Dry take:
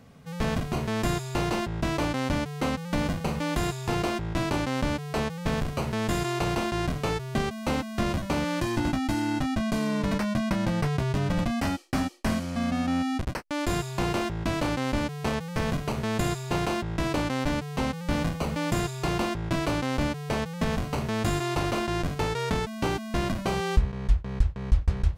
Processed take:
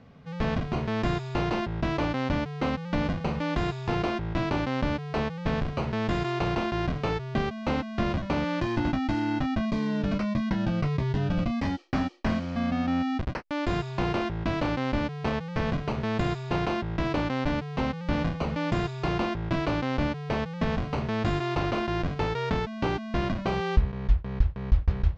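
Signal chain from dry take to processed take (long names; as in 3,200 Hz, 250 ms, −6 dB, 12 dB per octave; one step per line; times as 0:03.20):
Bessel low-pass filter 3,600 Hz, order 6
0:09.65–0:11.79: phaser whose notches keep moving one way falling 1.6 Hz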